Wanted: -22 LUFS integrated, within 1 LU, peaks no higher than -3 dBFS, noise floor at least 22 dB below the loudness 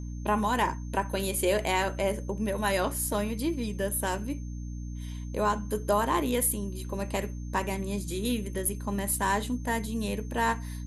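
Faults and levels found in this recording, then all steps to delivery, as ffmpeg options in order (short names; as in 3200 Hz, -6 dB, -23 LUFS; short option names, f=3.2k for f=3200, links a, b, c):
hum 60 Hz; harmonics up to 300 Hz; hum level -34 dBFS; steady tone 6300 Hz; tone level -56 dBFS; loudness -29.5 LUFS; peak -12.5 dBFS; loudness target -22.0 LUFS
-> -af "bandreject=f=60:t=h:w=4,bandreject=f=120:t=h:w=4,bandreject=f=180:t=h:w=4,bandreject=f=240:t=h:w=4,bandreject=f=300:t=h:w=4"
-af "bandreject=f=6.3k:w=30"
-af "volume=7.5dB"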